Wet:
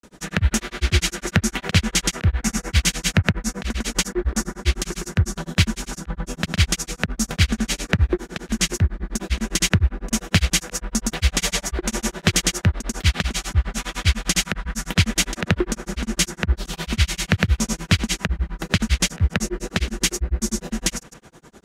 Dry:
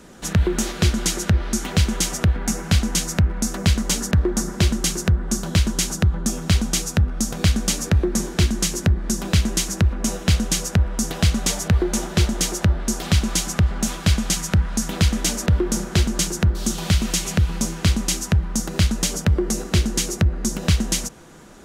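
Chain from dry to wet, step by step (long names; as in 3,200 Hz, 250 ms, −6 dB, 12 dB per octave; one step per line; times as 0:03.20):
dynamic equaliser 2,100 Hz, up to +8 dB, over −42 dBFS, Q 0.89
granular cloud, grains 9.9 per second, pitch spread up and down by 0 semitones
level +1.5 dB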